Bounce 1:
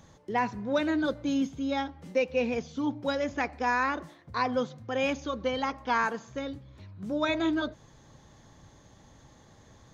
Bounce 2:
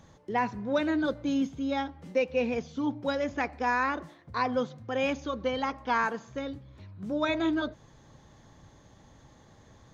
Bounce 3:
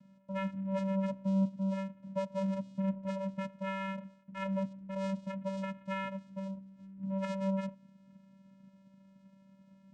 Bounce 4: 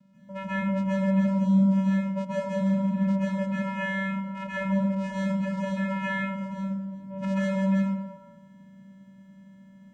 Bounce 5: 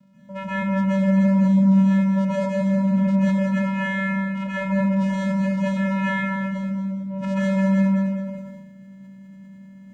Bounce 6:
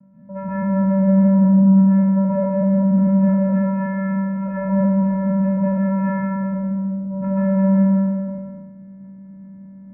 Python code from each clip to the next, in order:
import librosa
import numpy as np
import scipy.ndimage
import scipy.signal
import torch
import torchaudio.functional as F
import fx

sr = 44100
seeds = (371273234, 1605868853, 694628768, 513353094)

y1 = fx.high_shelf(x, sr, hz=5100.0, db=-5.0)
y2 = fx.vocoder(y1, sr, bands=4, carrier='square', carrier_hz=193.0)
y2 = F.gain(torch.from_numpy(y2), -5.0).numpy()
y3 = fx.rev_plate(y2, sr, seeds[0], rt60_s=1.2, hf_ratio=0.5, predelay_ms=120, drr_db=-8.0)
y4 = fx.echo_feedback(y3, sr, ms=212, feedback_pct=25, wet_db=-6.5)
y4 = fx.sustainer(y4, sr, db_per_s=35.0)
y4 = F.gain(torch.from_numpy(y4), 3.5).numpy()
y5 = fx.spec_trails(y4, sr, decay_s=0.89)
y5 = scipy.signal.sosfilt(scipy.signal.bessel(6, 950.0, 'lowpass', norm='mag', fs=sr, output='sos'), y5)
y5 = F.gain(torch.from_numpy(y5), 3.5).numpy()